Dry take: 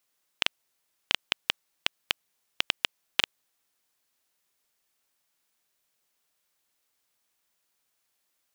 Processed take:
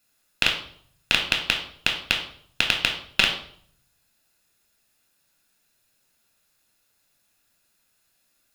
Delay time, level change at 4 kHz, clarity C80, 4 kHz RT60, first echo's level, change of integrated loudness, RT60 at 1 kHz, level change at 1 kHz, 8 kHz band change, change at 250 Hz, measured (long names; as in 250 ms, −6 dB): no echo audible, +6.0 dB, 11.0 dB, 0.50 s, no echo audible, +7.5 dB, 0.55 s, +6.5 dB, +6.5 dB, +11.5 dB